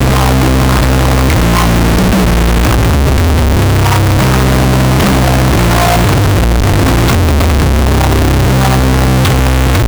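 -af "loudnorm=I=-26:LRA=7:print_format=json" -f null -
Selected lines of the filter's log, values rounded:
"input_i" : "-9.5",
"input_tp" : "-2.4",
"input_lra" : "0.3",
"input_thresh" : "-19.5",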